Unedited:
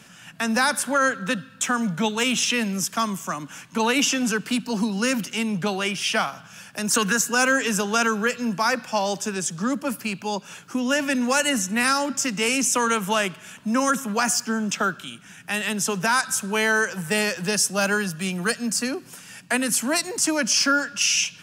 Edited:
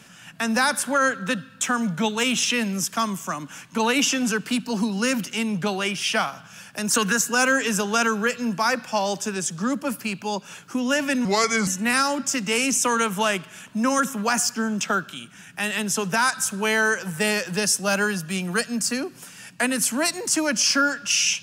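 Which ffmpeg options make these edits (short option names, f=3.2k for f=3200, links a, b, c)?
-filter_complex "[0:a]asplit=3[a][b][c];[a]atrim=end=11.254[d];[b]atrim=start=11.25:end=11.58,asetpts=PTS-STARTPTS,asetrate=34398,aresample=44100[e];[c]atrim=start=11.576[f];[d][e]acrossfade=d=0.004:c1=hsin:c2=hsin[g];[g][f]acrossfade=d=0.004:c1=hsin:c2=hsin"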